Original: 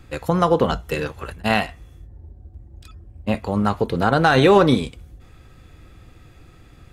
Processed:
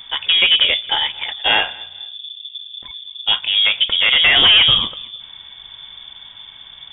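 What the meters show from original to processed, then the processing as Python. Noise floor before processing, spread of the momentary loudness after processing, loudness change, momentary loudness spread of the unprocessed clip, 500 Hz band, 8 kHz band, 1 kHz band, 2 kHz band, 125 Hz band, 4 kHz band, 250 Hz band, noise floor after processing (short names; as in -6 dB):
-48 dBFS, 22 LU, +6.5 dB, 15 LU, -13.5 dB, under -35 dB, -5.0 dB, +8.5 dB, -14.0 dB, +21.0 dB, -17.5 dB, -41 dBFS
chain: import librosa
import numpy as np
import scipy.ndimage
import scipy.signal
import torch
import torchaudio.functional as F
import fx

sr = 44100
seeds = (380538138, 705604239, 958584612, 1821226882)

p1 = fx.high_shelf(x, sr, hz=2600.0, db=6.0)
p2 = 10.0 ** (-13.0 / 20.0) * np.tanh(p1 / 10.0 ** (-13.0 / 20.0))
p3 = p2 + fx.echo_feedback(p2, sr, ms=227, feedback_pct=32, wet_db=-23.5, dry=0)
p4 = fx.freq_invert(p3, sr, carrier_hz=3500)
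y = p4 * 10.0 ** (6.0 / 20.0)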